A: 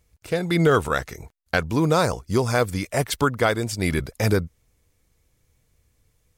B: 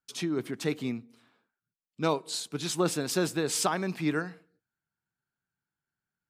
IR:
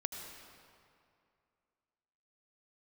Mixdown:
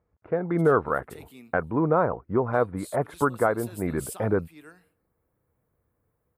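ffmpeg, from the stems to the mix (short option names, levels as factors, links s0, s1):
-filter_complex "[0:a]lowpass=f=1400:w=0.5412,lowpass=f=1400:w=1.3066,volume=0.944,asplit=2[s0][s1];[1:a]equalizer=f=2900:w=1.9:g=4.5,aexciter=amount=10.4:drive=2.6:freq=8400,adelay=500,volume=0.355[s2];[s1]apad=whole_len=299530[s3];[s2][s3]sidechaincompress=threshold=0.0251:ratio=4:attack=11:release=639[s4];[s0][s4]amix=inputs=2:normalize=0,highpass=f=230:p=1"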